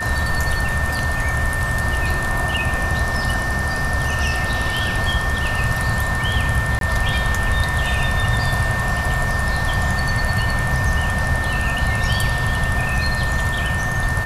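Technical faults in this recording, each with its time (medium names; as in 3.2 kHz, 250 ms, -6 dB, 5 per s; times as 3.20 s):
whine 1.8 kHz -23 dBFS
6.79–6.81 s: dropout 22 ms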